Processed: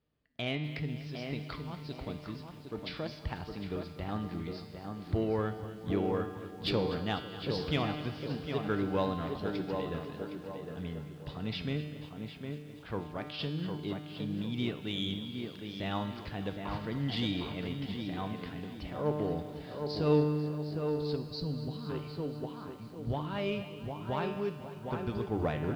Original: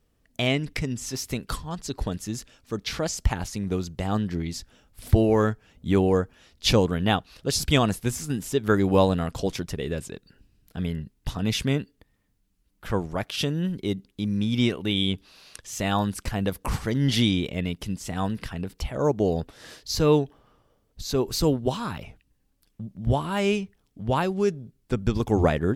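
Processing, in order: steep low-pass 4900 Hz 72 dB/oct; resonator 150 Hz, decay 1.5 s, mix 80%; tape echo 0.759 s, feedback 41%, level -4.5 dB, low-pass 1700 Hz; on a send at -19.5 dB: reverb RT60 1.0 s, pre-delay 3 ms; on the sum: spectral gain 21.16–21.89, 260–3800 Hz -12 dB; HPF 66 Hz 12 dB/oct; in parallel at -9 dB: hard clip -33.5 dBFS, distortion -8 dB; on the sum: lo-fi delay 0.246 s, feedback 80%, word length 9-bit, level -15 dB

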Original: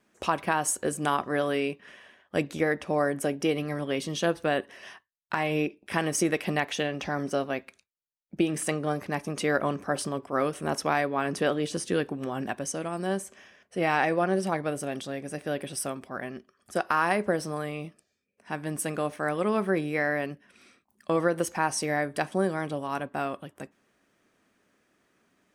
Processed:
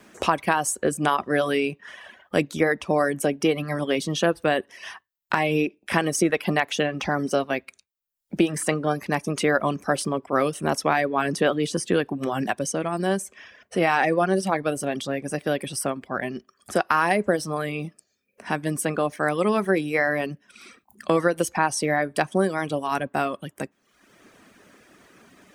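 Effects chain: reverb removal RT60 0.68 s; three-band squash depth 40%; gain +5.5 dB

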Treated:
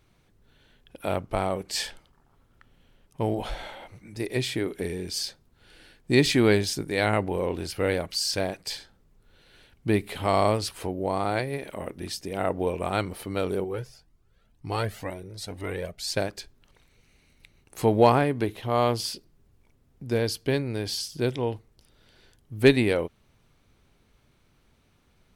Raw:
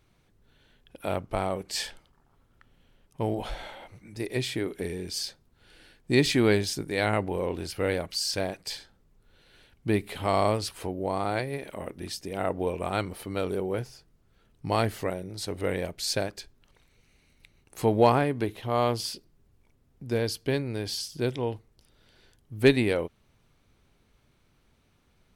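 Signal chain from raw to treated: 13.64–16.17 cascading flanger rising 2 Hz; gain +2 dB

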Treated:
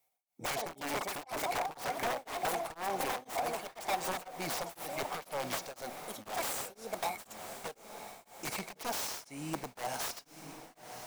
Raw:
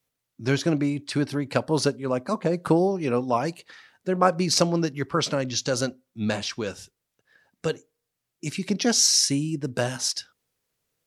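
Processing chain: echoes that change speed 0.116 s, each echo +6 st, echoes 2, each echo -6 dB; pre-emphasis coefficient 0.8; small resonant body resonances 750/2200 Hz, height 14 dB, ringing for 20 ms; compressor 16:1, threshold -33 dBFS, peak gain reduction 16 dB; wrapped overs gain 32.5 dB; bell 770 Hz +11 dB 2.2 oct; diffused feedback echo 1.05 s, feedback 54%, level -11 dB; beating tremolo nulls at 2 Hz

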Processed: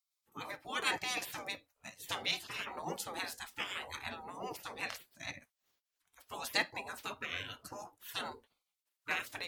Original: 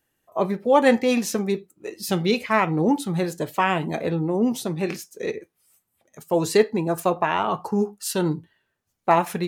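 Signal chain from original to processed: spectral gate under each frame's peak -20 dB weak; gain -2 dB

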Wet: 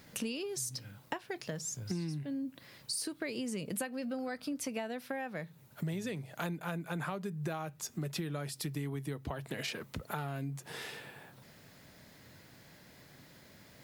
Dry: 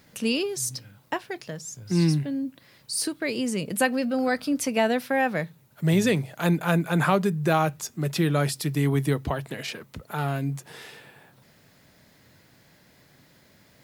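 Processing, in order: compressor 16:1, threshold -34 dBFS, peak gain reduction 19 dB

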